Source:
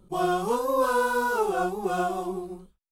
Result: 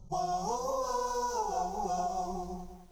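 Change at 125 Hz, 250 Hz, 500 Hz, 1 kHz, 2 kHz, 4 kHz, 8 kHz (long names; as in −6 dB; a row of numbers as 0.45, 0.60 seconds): −5.0, −11.5, −9.5, −5.0, −20.0, −5.5, −0.5 decibels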